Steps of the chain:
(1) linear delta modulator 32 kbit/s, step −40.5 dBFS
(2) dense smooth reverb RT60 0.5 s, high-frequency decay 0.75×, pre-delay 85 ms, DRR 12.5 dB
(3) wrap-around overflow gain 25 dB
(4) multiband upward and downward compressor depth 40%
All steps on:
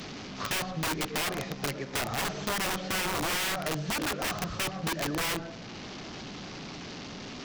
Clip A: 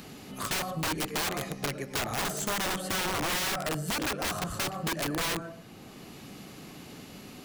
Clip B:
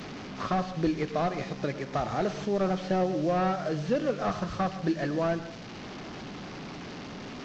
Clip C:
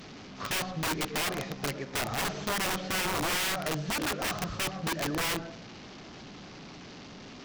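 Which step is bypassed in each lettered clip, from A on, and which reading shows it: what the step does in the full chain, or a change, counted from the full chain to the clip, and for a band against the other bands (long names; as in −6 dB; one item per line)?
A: 1, change in momentary loudness spread +5 LU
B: 3, change in crest factor −4.5 dB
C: 4, change in crest factor −11.0 dB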